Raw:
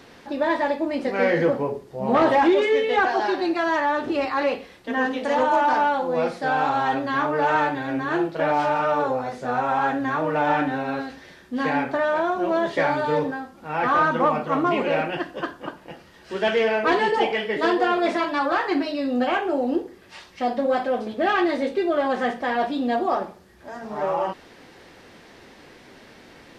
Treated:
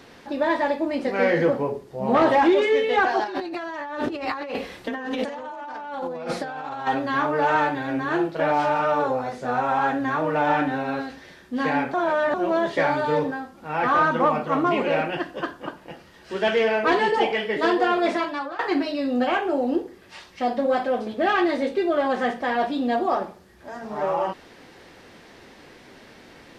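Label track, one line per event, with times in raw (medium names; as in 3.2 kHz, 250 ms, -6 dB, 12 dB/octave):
3.240000	6.870000	compressor with a negative ratio -31 dBFS
11.940000	12.340000	reverse
18.130000	18.590000	fade out linear, to -18 dB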